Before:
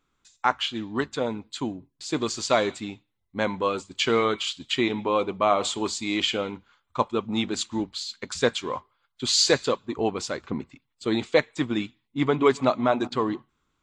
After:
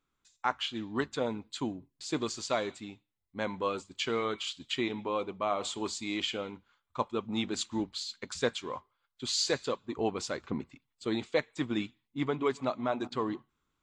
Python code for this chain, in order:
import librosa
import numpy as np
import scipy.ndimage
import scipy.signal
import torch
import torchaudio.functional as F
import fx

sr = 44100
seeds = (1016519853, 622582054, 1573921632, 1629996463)

y = fx.rider(x, sr, range_db=3, speed_s=0.5)
y = y * 10.0 ** (-7.5 / 20.0)